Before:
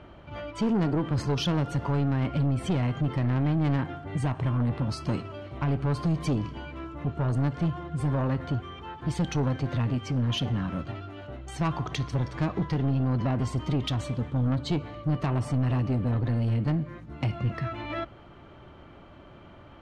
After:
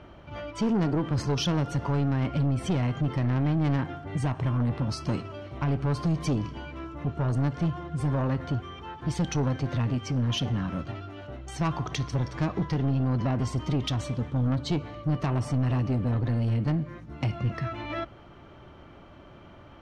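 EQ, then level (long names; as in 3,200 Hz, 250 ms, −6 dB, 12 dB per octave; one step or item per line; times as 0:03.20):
parametric band 5,700 Hz +6 dB 0.31 octaves
0.0 dB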